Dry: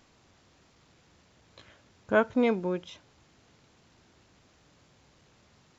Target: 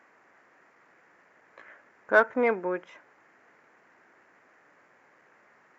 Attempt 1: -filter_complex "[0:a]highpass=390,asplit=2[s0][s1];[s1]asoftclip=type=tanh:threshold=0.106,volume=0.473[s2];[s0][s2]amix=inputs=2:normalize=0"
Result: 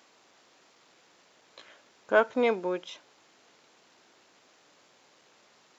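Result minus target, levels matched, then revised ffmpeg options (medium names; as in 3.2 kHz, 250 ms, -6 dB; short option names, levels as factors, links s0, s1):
4 kHz band +10.5 dB
-filter_complex "[0:a]highpass=390,highshelf=f=2600:t=q:w=3:g=-12,asplit=2[s0][s1];[s1]asoftclip=type=tanh:threshold=0.106,volume=0.473[s2];[s0][s2]amix=inputs=2:normalize=0"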